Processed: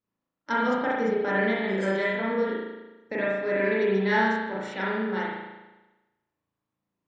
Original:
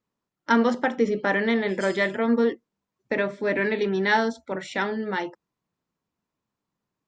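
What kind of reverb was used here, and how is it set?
spring tank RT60 1.1 s, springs 36 ms, chirp 60 ms, DRR -6 dB; gain -8.5 dB

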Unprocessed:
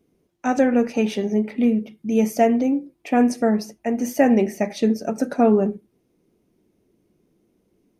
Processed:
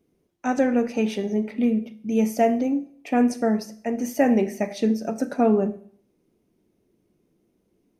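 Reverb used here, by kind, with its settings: Schroeder reverb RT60 0.58 s, combs from 25 ms, DRR 14 dB; gain -3 dB

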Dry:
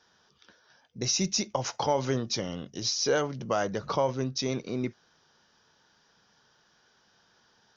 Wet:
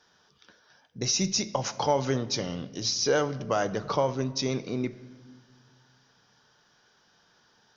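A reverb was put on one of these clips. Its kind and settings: shoebox room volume 1400 m³, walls mixed, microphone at 0.38 m; gain +1 dB

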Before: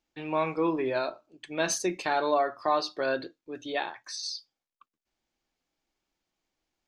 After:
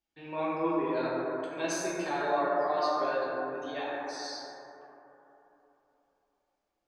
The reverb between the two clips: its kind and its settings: plate-style reverb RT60 3.4 s, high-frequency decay 0.25×, DRR -7.5 dB; gain -10.5 dB

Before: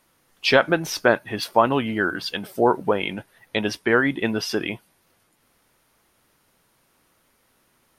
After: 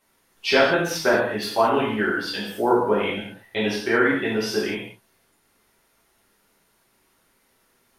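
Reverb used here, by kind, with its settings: non-linear reverb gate 0.25 s falling, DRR -7.5 dB; gain -8 dB

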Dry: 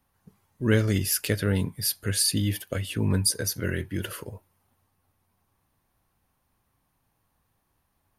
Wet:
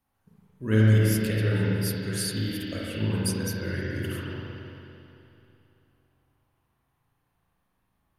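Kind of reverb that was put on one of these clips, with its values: spring tank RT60 2.9 s, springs 37/55 ms, chirp 35 ms, DRR -6.5 dB; gain -8 dB

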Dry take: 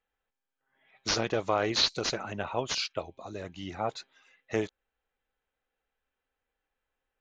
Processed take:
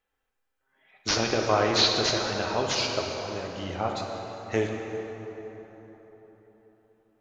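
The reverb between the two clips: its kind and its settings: plate-style reverb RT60 4.1 s, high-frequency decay 0.55×, DRR 0.5 dB; gain +2.5 dB

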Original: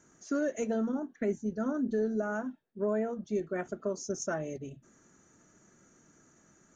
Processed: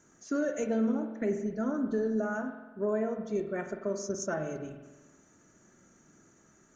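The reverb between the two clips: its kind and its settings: spring tank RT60 1.2 s, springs 45 ms, chirp 20 ms, DRR 6 dB

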